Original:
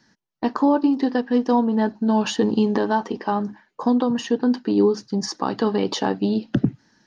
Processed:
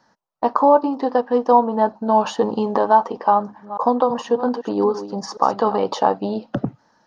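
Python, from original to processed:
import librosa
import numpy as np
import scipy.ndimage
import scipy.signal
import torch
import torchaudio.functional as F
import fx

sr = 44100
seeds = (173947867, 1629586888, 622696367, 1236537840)

y = fx.reverse_delay(x, sr, ms=228, wet_db=-11.5, at=(3.32, 5.76))
y = fx.band_shelf(y, sr, hz=800.0, db=13.5, octaves=1.7)
y = F.gain(torch.from_numpy(y), -4.5).numpy()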